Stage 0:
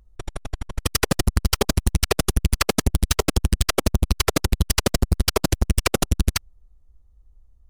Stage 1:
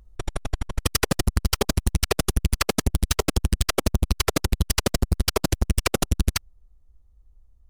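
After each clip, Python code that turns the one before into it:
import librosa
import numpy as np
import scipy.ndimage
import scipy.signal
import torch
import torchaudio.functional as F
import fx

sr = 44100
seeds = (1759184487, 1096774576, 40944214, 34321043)

y = fx.rider(x, sr, range_db=5, speed_s=0.5)
y = y * 10.0 ** (-2.0 / 20.0)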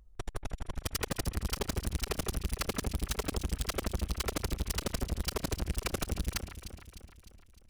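y = fx.echo_alternate(x, sr, ms=152, hz=2500.0, feedback_pct=72, wet_db=-12)
y = np.clip(10.0 ** (20.0 / 20.0) * y, -1.0, 1.0) / 10.0 ** (20.0 / 20.0)
y = y * 10.0 ** (-7.0 / 20.0)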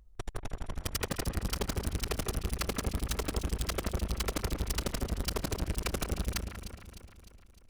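y = fx.echo_wet_lowpass(x, sr, ms=187, feedback_pct=37, hz=1800.0, wet_db=-7)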